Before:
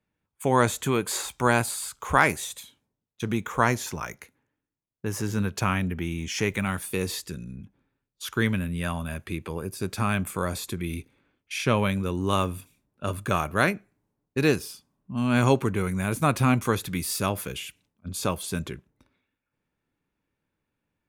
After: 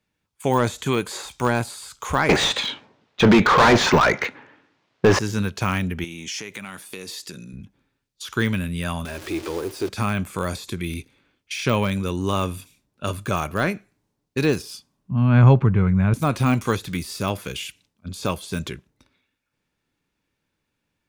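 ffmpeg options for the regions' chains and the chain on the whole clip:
-filter_complex "[0:a]asettb=1/sr,asplit=3[s0][s1][s2];[s0]atrim=end=2.294[s3];[s1]atrim=start=2.29:end=5.19,asetpts=PTS-STARTPTS,afade=t=in:d=0.004:c=qsin,afade=t=out:st=2.896:d=0.004:c=qsin,highpass=42,adynamicsmooth=sensitivity=6:basefreq=2700,asplit=2[s4][s5];[s5]highpass=f=720:p=1,volume=70.8,asoftclip=type=tanh:threshold=0.562[s6];[s4][s6]amix=inputs=2:normalize=0,lowpass=f=3400:p=1,volume=0.501[s7];[s2]atrim=start=5.186[s8];[s3][s7]acrossfade=d=0.004:c1=hsin:c2=qsin[s9];[s9][s8]acrossfade=d=0.004:c1=qsin:c2=hsin,asettb=1/sr,asplit=3[s10][s11][s12];[s10]atrim=end=6.044[s13];[s11]atrim=start=6.04:end=7.53,asetpts=PTS-STARTPTS,afade=t=in:d=0.004:c=qsin,afade=t=out:st=1.486:d=0.004:c=qsin,highpass=180,acompressor=threshold=0.0178:ratio=6:attack=3.2:release=140:knee=1:detection=peak[s14];[s12]atrim=start=7.526[s15];[s13][s14]acrossfade=d=0.004:c1=hsin:c2=qsin[s16];[s16][s15]acrossfade=d=0.004:c1=qsin:c2=hsin,asettb=1/sr,asplit=3[s17][s18][s19];[s17]atrim=end=9.054[s20];[s18]atrim=start=9.05:end=9.89,asetpts=PTS-STARTPTS,afade=t=in:d=0.004:c=qsin,afade=t=out:st=0.836:d=0.004:c=qsin,aeval=exprs='val(0)+0.5*0.0188*sgn(val(0))':c=same,acrusher=bits=5:mode=log:mix=0:aa=0.000001,lowshelf=f=250:t=q:w=3:g=-7[s21];[s19]atrim=start=9.886[s22];[s20][s21]acrossfade=d=0.004:c1=hsin:c2=qsin[s23];[s23][s22]acrossfade=d=0.004:c1=qsin:c2=hsin,asettb=1/sr,asplit=3[s24][s25][s26];[s24]atrim=end=15.114[s27];[s25]atrim=start=15.11:end=16.14,asetpts=PTS-STARTPTS,afade=t=in:d=0.004:c=qsin,afade=t=out:st=1.026:d=0.004:c=qsin,lowpass=1500,lowshelf=f=210:t=q:w=1.5:g=8[s28];[s26]atrim=start=16.136[s29];[s27][s28]acrossfade=d=0.004:c1=hsin:c2=qsin[s30];[s30][s29]acrossfade=d=0.004:c1=qsin:c2=hsin,deesser=0.9,equalizer=f=4800:w=0.63:g=8.5,volume=1.33"

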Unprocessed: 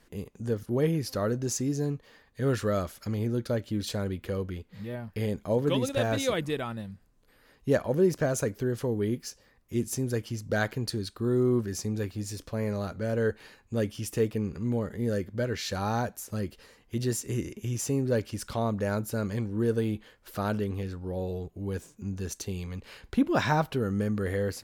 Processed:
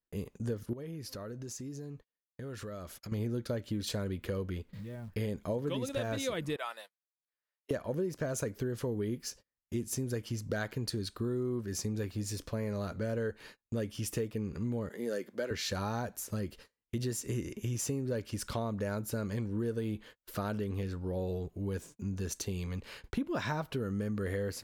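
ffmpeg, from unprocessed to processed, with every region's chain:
-filter_complex "[0:a]asettb=1/sr,asplit=3[s0][s1][s2];[s0]atrim=end=0.734[s3];[s1]atrim=start=0.73:end=3.12,asetpts=PTS-STARTPTS,afade=t=in:d=0.004:c=qsin,afade=t=out:st=2.386:d=0.004:c=qsin,agate=range=0.0224:threshold=0.00355:ratio=3:release=100:detection=peak,acompressor=threshold=0.01:ratio=6:attack=3.2:release=140:knee=1:detection=peak[s4];[s2]atrim=start=3.116[s5];[s3][s4]acrossfade=d=0.004:c1=hsin:c2=qsin[s6];[s6][s5]acrossfade=d=0.004:c1=qsin:c2=hsin,asettb=1/sr,asplit=3[s7][s8][s9];[s7]atrim=end=4.684[s10];[s8]atrim=start=4.68:end=5.15,asetpts=PTS-STARTPTS,afade=t=in:d=0.004:c=qsin,afade=t=out:st=0.466:d=0.004:c=qsin,acrusher=bits=6:mode=log:mix=0:aa=0.000001,lowshelf=f=160:g=8,acompressor=threshold=0.00794:ratio=3:attack=3.2:release=140:knee=1:detection=peak[s11];[s9]atrim=start=5.146[s12];[s10][s11]acrossfade=d=0.004:c1=hsin:c2=qsin[s13];[s13][s12]acrossfade=d=0.004:c1=qsin:c2=hsin,asettb=1/sr,asplit=3[s14][s15][s16];[s14]atrim=end=6.564[s17];[s15]atrim=start=6.56:end=7.71,asetpts=PTS-STARTPTS,afade=t=in:d=0.004:c=qsin,afade=t=out:st=1.146:d=0.004:c=qsin,highpass=f=590:w=0.5412,highpass=f=590:w=1.3066,adynamicequalizer=threshold=0.00316:dfrequency=2000:dqfactor=0.7:tfrequency=2000:tqfactor=0.7:attack=5:release=100:ratio=0.375:range=2:mode=boostabove:tftype=highshelf[s18];[s16]atrim=start=7.706[s19];[s17][s18]acrossfade=d=0.004:c1=hsin:c2=qsin[s20];[s20][s19]acrossfade=d=0.004:c1=qsin:c2=hsin,asettb=1/sr,asplit=3[s21][s22][s23];[s21]atrim=end=14.894[s24];[s22]atrim=start=14.89:end=15.51,asetpts=PTS-STARTPTS,afade=t=in:d=0.004:c=qsin,afade=t=out:st=0.616:d=0.004:c=qsin,highpass=f=170:w=0.5412,highpass=f=170:w=1.3066,bass=f=250:g=-12,treble=f=4000:g=1[s25];[s23]atrim=start=15.506[s26];[s24][s25]acrossfade=d=0.004:c1=hsin:c2=qsin[s27];[s27][s26]acrossfade=d=0.004:c1=qsin:c2=hsin,bandreject=f=780:w=15,agate=range=0.02:threshold=0.00355:ratio=16:detection=peak,acompressor=threshold=0.0282:ratio=6"

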